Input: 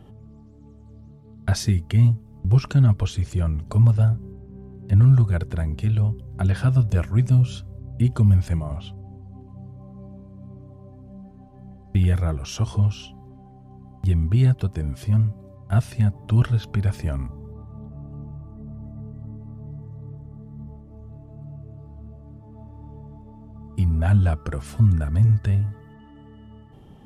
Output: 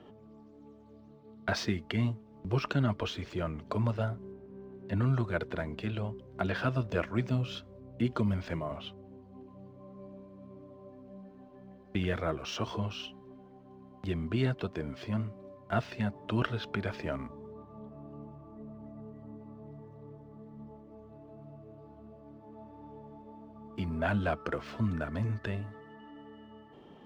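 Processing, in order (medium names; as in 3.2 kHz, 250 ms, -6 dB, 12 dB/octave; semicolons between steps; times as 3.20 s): median filter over 5 samples; three-band isolator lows -21 dB, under 240 Hz, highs -17 dB, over 5.2 kHz; band-stop 790 Hz, Q 12; trim +1 dB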